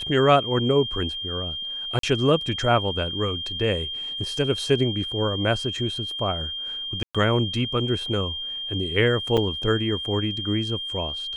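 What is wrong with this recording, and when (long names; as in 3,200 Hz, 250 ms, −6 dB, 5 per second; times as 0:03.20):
whistle 3,200 Hz −29 dBFS
0:01.99–0:02.03: drop-out 43 ms
0:07.03–0:07.15: drop-out 116 ms
0:09.37–0:09.38: drop-out 5.6 ms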